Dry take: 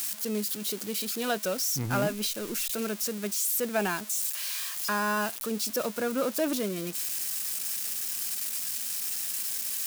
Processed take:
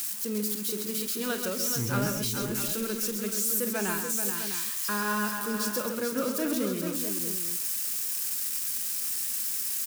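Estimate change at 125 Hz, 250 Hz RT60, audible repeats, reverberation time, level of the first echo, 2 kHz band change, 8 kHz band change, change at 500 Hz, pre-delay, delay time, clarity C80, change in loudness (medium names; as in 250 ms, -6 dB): +2.0 dB, no reverb, 5, no reverb, -13.0 dB, -0.5 dB, +1.0 dB, -1.5 dB, no reverb, 48 ms, no reverb, +1.0 dB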